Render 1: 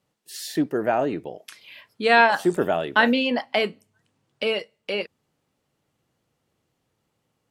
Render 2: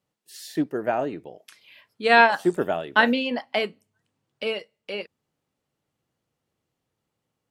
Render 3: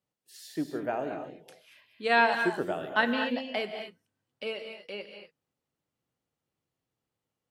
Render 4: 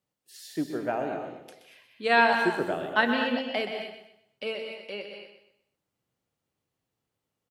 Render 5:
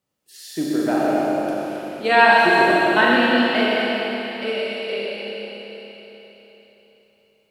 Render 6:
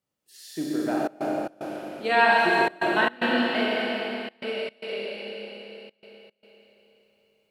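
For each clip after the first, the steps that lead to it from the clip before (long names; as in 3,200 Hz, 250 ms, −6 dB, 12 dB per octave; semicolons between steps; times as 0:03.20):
expander for the loud parts 1.5 to 1, over −28 dBFS; level +1 dB
reverb whose tail is shaped and stops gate 260 ms rising, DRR 5.5 dB; level −7.5 dB
repeating echo 125 ms, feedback 34%, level −9.5 dB; level +2 dB
four-comb reverb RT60 3.9 s, combs from 29 ms, DRR −5 dB; level +4 dB
gate pattern "xxxxxxxx.xx." 112 BPM −24 dB; level −6 dB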